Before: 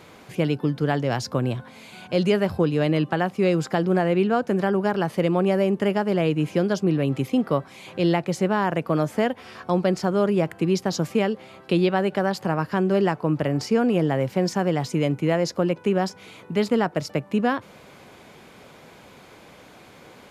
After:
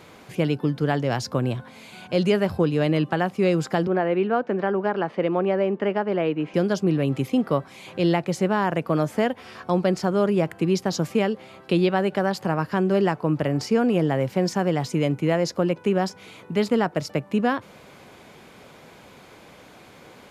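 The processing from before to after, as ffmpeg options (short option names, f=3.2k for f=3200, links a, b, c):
-filter_complex "[0:a]asettb=1/sr,asplit=3[a][b][c];[a]atrim=end=3.874[d];[b]atrim=start=3.87:end=6.54,asetpts=PTS-STARTPTS,afade=t=in:d=0.004:c=qsin,afade=t=out:st=2.666:d=0.004:c=qsin,highpass=240,lowpass=2.6k[e];[c]atrim=start=6.536[f];[d][e]acrossfade=d=0.004:c1=hsin:c2=qsin[g];[g][f]acrossfade=d=0.004:c1=qsin:c2=hsin"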